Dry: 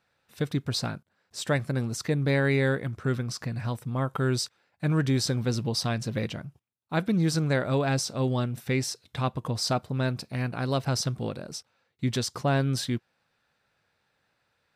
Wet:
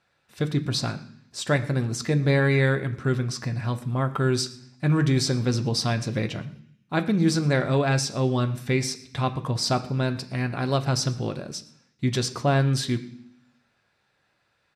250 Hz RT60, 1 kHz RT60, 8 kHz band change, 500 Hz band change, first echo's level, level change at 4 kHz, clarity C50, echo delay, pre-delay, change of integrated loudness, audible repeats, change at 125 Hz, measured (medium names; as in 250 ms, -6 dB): 0.90 s, 0.65 s, +2.5 dB, +3.0 dB, -22.0 dB, +3.0 dB, 14.0 dB, 118 ms, 3 ms, +3.5 dB, 1, +3.5 dB